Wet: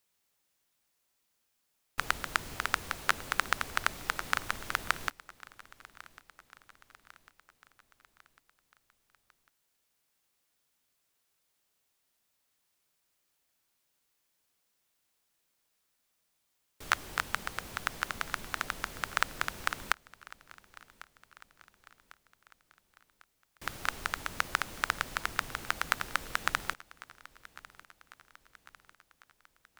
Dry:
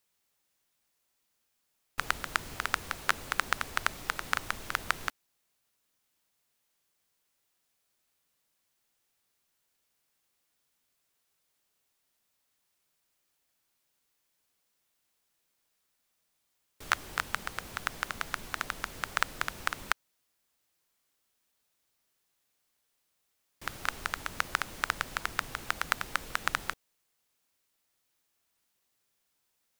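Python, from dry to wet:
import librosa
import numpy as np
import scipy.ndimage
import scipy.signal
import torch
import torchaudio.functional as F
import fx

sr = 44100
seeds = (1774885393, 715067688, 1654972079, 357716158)

y = fx.echo_feedback(x, sr, ms=1099, feedback_pct=52, wet_db=-20.5)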